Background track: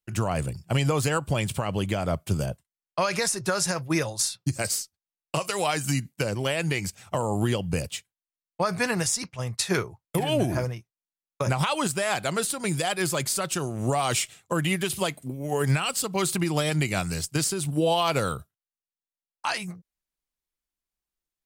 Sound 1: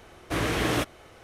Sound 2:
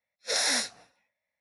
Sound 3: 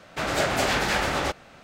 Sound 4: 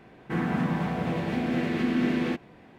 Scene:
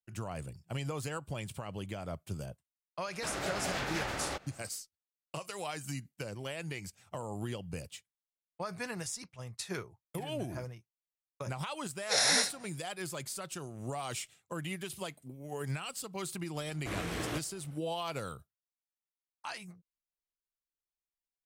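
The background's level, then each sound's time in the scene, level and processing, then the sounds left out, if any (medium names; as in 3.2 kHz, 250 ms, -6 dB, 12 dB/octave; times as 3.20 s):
background track -13.5 dB
3.06 s: add 3 -8 dB + compression 1.5:1, threshold -31 dBFS
11.82 s: add 2 -0.5 dB
16.55 s: add 1 -11.5 dB
not used: 4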